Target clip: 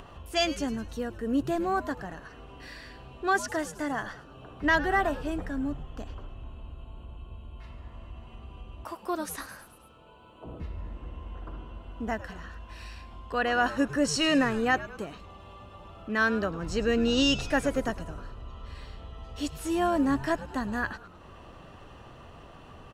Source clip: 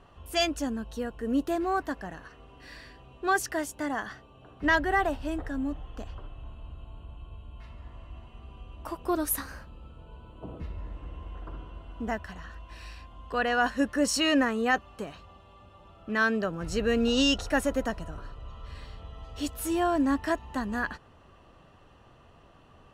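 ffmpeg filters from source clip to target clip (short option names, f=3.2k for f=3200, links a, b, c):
-filter_complex "[0:a]acompressor=mode=upward:threshold=-39dB:ratio=2.5,asettb=1/sr,asplit=3[a][b][c];[a]atrim=end=8.844[d];[b]atrim=start=8.84:end=10.46,asetpts=PTS-STARTPTS,afade=t=in:d=0.004:c=qsin,afade=t=out:st=1.616:d=0.004:c=qsin,highpass=f=490:p=1[e];[c]atrim=start=10.456[f];[d][e]acrossfade=d=0.004:c1=hsin:c2=qsin[g];[g][f]acrossfade=d=0.004:c1=qsin:c2=hsin,asplit=6[h][i][j][k][l][m];[i]adelay=105,afreqshift=-140,volume=-15.5dB[n];[j]adelay=210,afreqshift=-280,volume=-20.9dB[o];[k]adelay=315,afreqshift=-420,volume=-26.2dB[p];[l]adelay=420,afreqshift=-560,volume=-31.6dB[q];[m]adelay=525,afreqshift=-700,volume=-36.9dB[r];[h][n][o][p][q][r]amix=inputs=6:normalize=0,acrossover=split=8900[s][t];[t]acompressor=threshold=-54dB:ratio=4:attack=1:release=60[u];[s][u]amix=inputs=2:normalize=0,asettb=1/sr,asplit=3[v][w][x];[v]atrim=end=16.534[y];[w]atrim=start=16.53:end=17.24,asetpts=PTS-STARTPTS,afade=t=in:d=0.004:c=qsin,afade=t=out:st=0.706:d=0.004:c=qsin,equalizer=f=11k:t=o:w=0.23:g=-12[z];[x]atrim=start=17.236[aa];[y][z]acrossfade=d=0.004:c1=hsin:c2=qsin[ab];[ab][aa]acrossfade=d=0.004:c1=qsin:c2=hsin"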